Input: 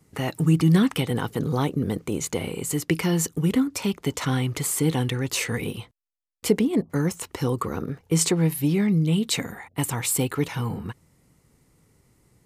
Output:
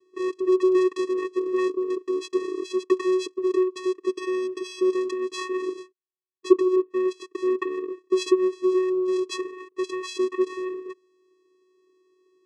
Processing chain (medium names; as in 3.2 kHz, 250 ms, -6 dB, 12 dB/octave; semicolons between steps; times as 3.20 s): 1.29–2.08 s: dynamic bell 2.8 kHz, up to +4 dB, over -44 dBFS, Q 0.8; vocoder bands 4, square 370 Hz; 4.09–4.93 s: comb of notches 1 kHz